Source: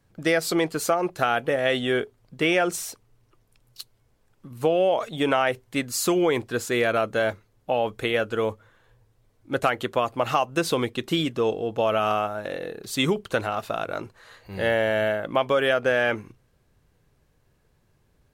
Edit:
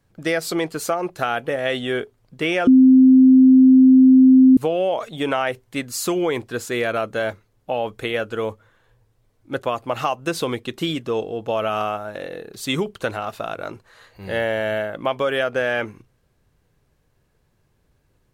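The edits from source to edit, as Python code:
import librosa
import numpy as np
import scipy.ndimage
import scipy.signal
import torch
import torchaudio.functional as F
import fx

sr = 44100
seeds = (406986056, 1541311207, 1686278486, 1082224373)

y = fx.edit(x, sr, fx.bleep(start_s=2.67, length_s=1.9, hz=260.0, db=-7.0),
    fx.cut(start_s=9.62, length_s=0.3), tone=tone)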